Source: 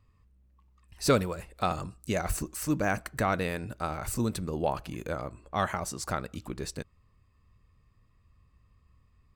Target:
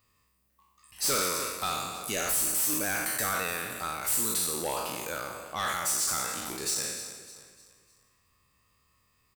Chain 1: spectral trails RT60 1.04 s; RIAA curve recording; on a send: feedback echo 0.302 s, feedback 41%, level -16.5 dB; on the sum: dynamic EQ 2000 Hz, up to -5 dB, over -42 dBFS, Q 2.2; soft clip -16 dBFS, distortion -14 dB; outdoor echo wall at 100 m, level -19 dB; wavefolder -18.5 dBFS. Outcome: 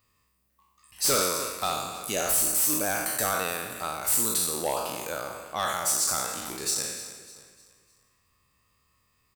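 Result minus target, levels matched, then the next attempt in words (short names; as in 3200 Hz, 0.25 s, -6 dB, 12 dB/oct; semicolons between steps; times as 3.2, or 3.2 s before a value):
soft clip: distortion -7 dB; 500 Hz band +2.0 dB
spectral trails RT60 1.04 s; RIAA curve recording; on a send: feedback echo 0.302 s, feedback 41%, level -16.5 dB; on the sum: dynamic EQ 660 Hz, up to -5 dB, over -42 dBFS, Q 2.2; soft clip -24 dBFS, distortion -7 dB; outdoor echo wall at 100 m, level -19 dB; wavefolder -18.5 dBFS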